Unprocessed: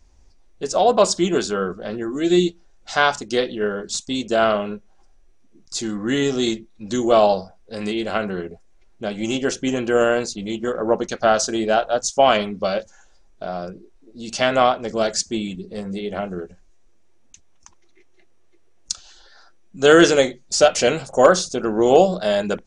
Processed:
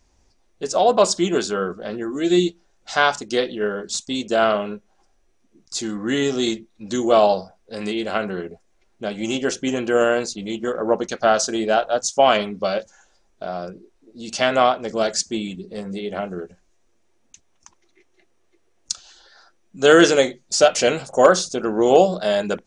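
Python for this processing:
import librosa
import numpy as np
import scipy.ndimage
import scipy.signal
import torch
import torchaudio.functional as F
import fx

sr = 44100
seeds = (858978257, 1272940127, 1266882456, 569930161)

y = fx.low_shelf(x, sr, hz=80.0, db=-11.0)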